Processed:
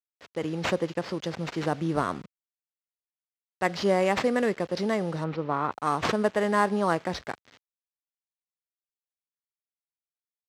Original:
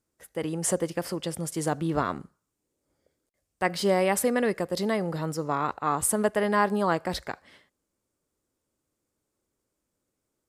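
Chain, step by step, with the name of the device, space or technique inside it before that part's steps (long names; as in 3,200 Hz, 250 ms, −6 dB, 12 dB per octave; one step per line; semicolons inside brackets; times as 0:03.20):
early 8-bit sampler (sample-rate reduction 9,700 Hz, jitter 0%; bit reduction 8 bits)
high-pass filter 72 Hz
0:05.24–0:05.72: low-pass filter 2,700 Hz 12 dB per octave
low-pass filter 5,500 Hz 12 dB per octave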